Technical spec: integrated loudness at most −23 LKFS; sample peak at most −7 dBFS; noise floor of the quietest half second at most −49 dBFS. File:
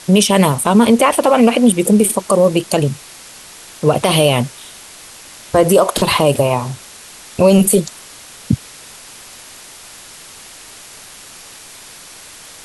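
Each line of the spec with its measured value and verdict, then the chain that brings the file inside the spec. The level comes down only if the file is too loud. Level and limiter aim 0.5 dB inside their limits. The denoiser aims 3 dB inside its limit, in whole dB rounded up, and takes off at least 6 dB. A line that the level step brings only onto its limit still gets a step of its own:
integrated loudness −13.5 LKFS: out of spec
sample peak −1.5 dBFS: out of spec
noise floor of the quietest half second −38 dBFS: out of spec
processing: broadband denoise 6 dB, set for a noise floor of −38 dBFS
level −10 dB

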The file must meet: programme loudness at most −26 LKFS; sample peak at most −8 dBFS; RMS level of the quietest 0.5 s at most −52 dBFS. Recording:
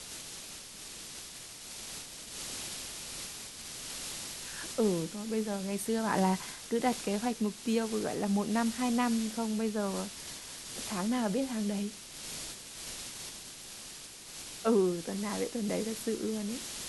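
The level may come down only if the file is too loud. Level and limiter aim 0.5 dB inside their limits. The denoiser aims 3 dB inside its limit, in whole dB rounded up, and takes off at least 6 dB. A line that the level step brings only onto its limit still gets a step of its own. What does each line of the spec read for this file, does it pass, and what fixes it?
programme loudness −34.5 LKFS: in spec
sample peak −15.5 dBFS: in spec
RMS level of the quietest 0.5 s −47 dBFS: out of spec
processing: broadband denoise 8 dB, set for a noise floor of −47 dBFS

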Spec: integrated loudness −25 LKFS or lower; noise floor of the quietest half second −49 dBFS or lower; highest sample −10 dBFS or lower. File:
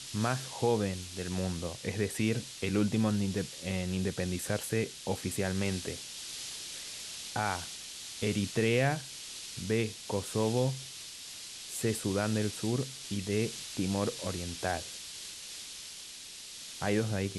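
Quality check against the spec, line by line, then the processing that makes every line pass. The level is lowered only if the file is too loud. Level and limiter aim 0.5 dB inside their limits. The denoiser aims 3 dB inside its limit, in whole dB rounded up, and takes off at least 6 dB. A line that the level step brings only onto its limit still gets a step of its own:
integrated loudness −33.5 LKFS: in spec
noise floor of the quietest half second −46 dBFS: out of spec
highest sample −14.5 dBFS: in spec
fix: broadband denoise 6 dB, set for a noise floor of −46 dBFS

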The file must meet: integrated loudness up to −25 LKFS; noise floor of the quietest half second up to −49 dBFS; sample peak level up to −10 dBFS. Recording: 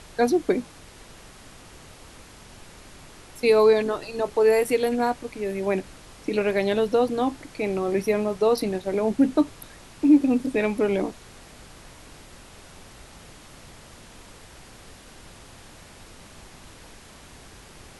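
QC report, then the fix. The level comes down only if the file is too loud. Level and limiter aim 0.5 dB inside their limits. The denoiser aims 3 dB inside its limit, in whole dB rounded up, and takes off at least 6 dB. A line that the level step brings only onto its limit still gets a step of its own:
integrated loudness −23.0 LKFS: out of spec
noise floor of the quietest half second −47 dBFS: out of spec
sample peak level −7.5 dBFS: out of spec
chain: level −2.5 dB
brickwall limiter −10.5 dBFS

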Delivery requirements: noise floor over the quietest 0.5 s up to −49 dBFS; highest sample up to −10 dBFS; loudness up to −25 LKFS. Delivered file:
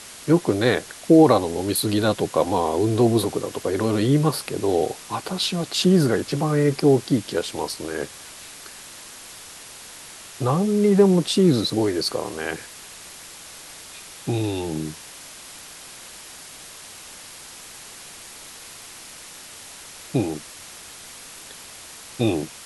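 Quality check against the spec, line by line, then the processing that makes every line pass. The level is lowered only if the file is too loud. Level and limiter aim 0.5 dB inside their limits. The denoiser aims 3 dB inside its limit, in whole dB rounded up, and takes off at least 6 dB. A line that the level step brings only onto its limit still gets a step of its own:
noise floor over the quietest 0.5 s −41 dBFS: out of spec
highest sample −4.0 dBFS: out of spec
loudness −21.5 LKFS: out of spec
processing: broadband denoise 7 dB, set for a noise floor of −41 dBFS
level −4 dB
brickwall limiter −10.5 dBFS

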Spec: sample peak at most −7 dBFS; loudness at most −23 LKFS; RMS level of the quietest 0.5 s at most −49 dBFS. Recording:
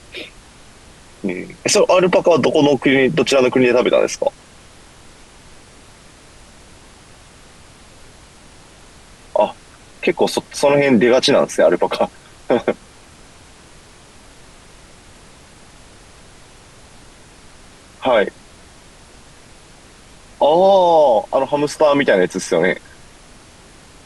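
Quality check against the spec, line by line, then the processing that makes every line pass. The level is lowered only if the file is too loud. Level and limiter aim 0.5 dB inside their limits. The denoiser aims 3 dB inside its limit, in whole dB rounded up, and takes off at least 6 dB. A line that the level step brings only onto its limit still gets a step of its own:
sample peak −4.0 dBFS: out of spec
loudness −15.5 LKFS: out of spec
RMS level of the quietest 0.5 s −44 dBFS: out of spec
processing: level −8 dB

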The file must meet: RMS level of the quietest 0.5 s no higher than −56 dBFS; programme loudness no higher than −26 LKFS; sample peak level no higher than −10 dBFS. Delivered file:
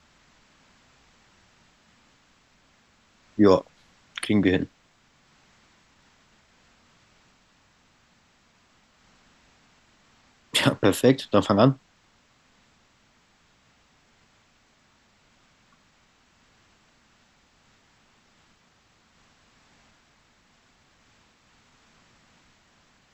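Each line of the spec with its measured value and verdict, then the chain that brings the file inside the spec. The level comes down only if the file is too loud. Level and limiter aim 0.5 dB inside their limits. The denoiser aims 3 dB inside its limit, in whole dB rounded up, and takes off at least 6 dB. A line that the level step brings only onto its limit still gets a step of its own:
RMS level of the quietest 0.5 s −63 dBFS: in spec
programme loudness −22.5 LKFS: out of spec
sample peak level −4.5 dBFS: out of spec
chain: level −4 dB
brickwall limiter −10.5 dBFS

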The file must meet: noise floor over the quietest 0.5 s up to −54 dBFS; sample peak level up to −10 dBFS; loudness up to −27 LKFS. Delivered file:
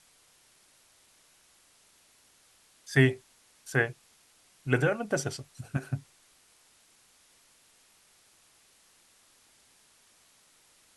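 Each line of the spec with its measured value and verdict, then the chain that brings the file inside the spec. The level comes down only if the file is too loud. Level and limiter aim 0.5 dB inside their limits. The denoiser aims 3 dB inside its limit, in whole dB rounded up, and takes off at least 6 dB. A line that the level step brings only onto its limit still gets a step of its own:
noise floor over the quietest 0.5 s −63 dBFS: in spec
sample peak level −8.0 dBFS: out of spec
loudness −30.0 LKFS: in spec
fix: brickwall limiter −10.5 dBFS

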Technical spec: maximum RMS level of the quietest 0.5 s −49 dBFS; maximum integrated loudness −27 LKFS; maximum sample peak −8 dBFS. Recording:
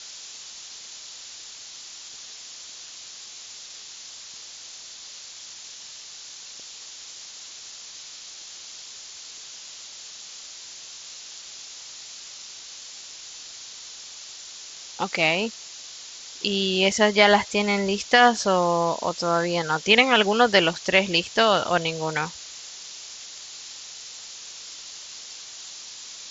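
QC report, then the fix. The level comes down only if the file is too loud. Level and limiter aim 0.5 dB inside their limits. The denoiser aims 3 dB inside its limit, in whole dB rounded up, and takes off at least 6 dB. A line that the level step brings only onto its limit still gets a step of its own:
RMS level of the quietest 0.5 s −42 dBFS: out of spec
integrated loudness −21.0 LKFS: out of spec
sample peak −3.5 dBFS: out of spec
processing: broadband denoise 6 dB, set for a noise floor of −42 dBFS
level −6.5 dB

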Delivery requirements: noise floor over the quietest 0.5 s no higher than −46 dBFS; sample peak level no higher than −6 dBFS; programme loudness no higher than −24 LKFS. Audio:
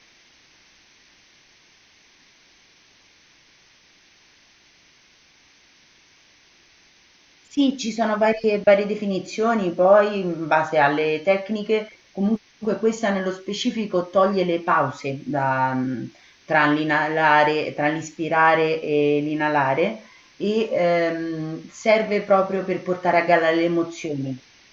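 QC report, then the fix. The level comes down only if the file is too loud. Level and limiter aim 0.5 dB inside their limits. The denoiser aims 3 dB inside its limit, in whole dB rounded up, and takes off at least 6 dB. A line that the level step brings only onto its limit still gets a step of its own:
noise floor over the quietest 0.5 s −56 dBFS: in spec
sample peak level −5.0 dBFS: out of spec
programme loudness −21.0 LKFS: out of spec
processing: level −3.5 dB

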